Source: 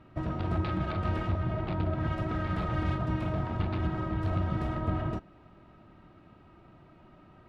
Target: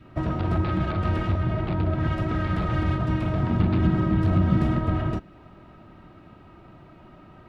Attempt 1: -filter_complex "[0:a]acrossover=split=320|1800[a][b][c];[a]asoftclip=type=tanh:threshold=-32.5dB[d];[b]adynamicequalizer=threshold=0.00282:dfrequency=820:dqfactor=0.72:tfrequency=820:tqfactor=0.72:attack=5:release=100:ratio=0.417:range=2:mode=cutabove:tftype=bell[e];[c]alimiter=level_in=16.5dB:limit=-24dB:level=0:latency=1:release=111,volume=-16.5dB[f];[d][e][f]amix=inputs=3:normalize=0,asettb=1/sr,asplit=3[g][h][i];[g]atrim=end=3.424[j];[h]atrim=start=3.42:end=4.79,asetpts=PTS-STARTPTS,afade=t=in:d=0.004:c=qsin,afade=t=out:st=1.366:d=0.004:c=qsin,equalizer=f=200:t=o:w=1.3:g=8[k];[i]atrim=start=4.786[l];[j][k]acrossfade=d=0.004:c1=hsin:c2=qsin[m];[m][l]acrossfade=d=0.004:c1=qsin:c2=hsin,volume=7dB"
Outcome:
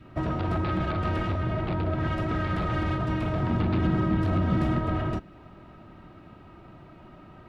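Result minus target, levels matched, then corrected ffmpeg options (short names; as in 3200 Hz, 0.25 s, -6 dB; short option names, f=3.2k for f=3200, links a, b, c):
soft clip: distortion +13 dB
-filter_complex "[0:a]acrossover=split=320|1800[a][b][c];[a]asoftclip=type=tanh:threshold=-21.5dB[d];[b]adynamicequalizer=threshold=0.00282:dfrequency=820:dqfactor=0.72:tfrequency=820:tqfactor=0.72:attack=5:release=100:ratio=0.417:range=2:mode=cutabove:tftype=bell[e];[c]alimiter=level_in=16.5dB:limit=-24dB:level=0:latency=1:release=111,volume=-16.5dB[f];[d][e][f]amix=inputs=3:normalize=0,asettb=1/sr,asplit=3[g][h][i];[g]atrim=end=3.424[j];[h]atrim=start=3.42:end=4.79,asetpts=PTS-STARTPTS,afade=t=in:d=0.004:c=qsin,afade=t=out:st=1.366:d=0.004:c=qsin,equalizer=f=200:t=o:w=1.3:g=8[k];[i]atrim=start=4.786[l];[j][k]acrossfade=d=0.004:c1=hsin:c2=qsin[m];[m][l]acrossfade=d=0.004:c1=qsin:c2=hsin,volume=7dB"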